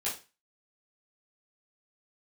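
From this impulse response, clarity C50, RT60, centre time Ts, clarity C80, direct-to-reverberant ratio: 8.0 dB, 0.30 s, 27 ms, 14.5 dB, -9.0 dB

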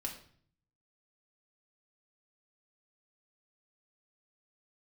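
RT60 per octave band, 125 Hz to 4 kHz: 1.0, 0.75, 0.55, 0.50, 0.50, 0.45 s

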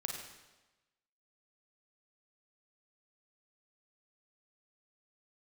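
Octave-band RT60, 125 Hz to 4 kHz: 1.1, 1.1, 1.1, 1.1, 1.1, 1.0 s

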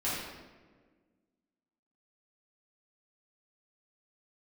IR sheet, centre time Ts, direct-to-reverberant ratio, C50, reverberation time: 86 ms, -10.5 dB, -1.0 dB, 1.5 s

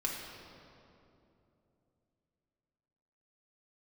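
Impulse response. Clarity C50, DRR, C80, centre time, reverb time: 1.0 dB, -3.0 dB, 3.0 dB, 99 ms, 2.9 s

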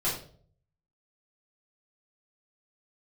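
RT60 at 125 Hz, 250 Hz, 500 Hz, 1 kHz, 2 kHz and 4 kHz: 0.95, 0.60, 0.60, 0.40, 0.35, 0.40 s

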